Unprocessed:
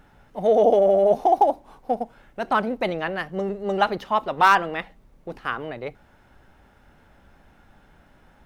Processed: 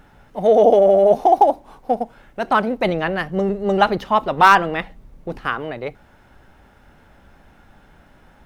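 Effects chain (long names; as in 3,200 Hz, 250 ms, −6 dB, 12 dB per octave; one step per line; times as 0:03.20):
0:02.84–0:05.49: low-shelf EQ 230 Hz +6.5 dB
level +4.5 dB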